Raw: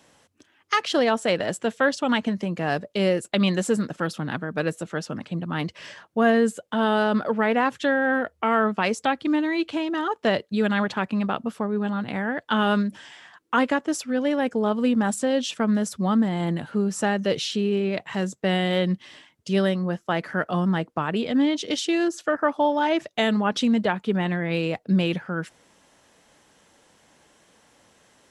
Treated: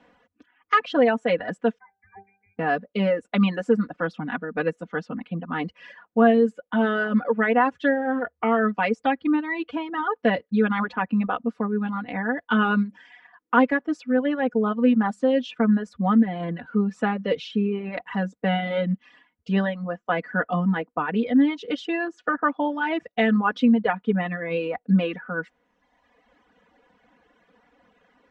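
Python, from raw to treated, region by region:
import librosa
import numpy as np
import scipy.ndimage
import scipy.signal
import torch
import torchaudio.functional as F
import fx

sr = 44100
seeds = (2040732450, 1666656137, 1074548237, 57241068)

y = fx.chain(x, sr, fx.freq_invert(carrier_hz=2600),
    fx.octave_resonator(note='G', decay_s=0.39), at=(1.78, 2.59))
y = scipy.signal.sosfilt(scipy.signal.cheby1(2, 1.0, 1900.0, 'lowpass', fs=sr, output='sos'), y)
y = fx.dereverb_blind(y, sr, rt60_s=1.3)
y = y + 0.86 * np.pad(y, (int(4.1 * sr / 1000.0), 0))[:len(y)]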